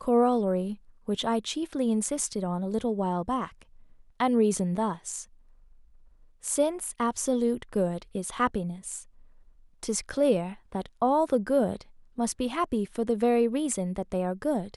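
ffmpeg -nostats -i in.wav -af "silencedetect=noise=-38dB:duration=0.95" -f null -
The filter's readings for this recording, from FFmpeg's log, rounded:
silence_start: 5.23
silence_end: 6.44 | silence_duration: 1.20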